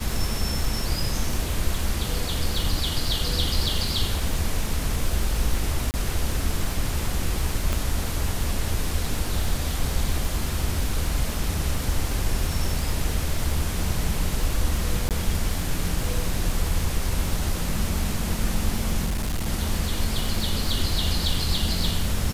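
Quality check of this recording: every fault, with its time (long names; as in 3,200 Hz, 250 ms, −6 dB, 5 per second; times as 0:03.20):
surface crackle 130 per second −30 dBFS
0:05.91–0:05.94: drop-out 29 ms
0:07.73: click
0:15.09–0:15.11: drop-out 18 ms
0:19.05–0:19.47: clipping −22 dBFS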